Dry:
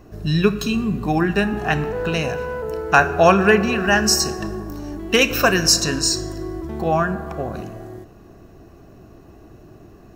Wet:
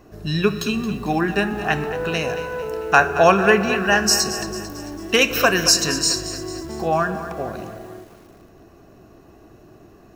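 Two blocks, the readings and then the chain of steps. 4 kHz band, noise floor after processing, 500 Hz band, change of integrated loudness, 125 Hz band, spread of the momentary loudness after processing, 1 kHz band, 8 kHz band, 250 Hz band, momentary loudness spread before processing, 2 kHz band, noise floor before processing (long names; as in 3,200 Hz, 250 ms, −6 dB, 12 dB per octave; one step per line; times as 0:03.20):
+0.5 dB, −48 dBFS, −0.5 dB, −0.5 dB, −4.0 dB, 15 LU, 0.0 dB, +0.5 dB, −2.5 dB, 15 LU, 0.0 dB, −46 dBFS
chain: low-shelf EQ 200 Hz −7 dB
feedback echo at a low word length 223 ms, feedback 55%, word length 7 bits, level −12.5 dB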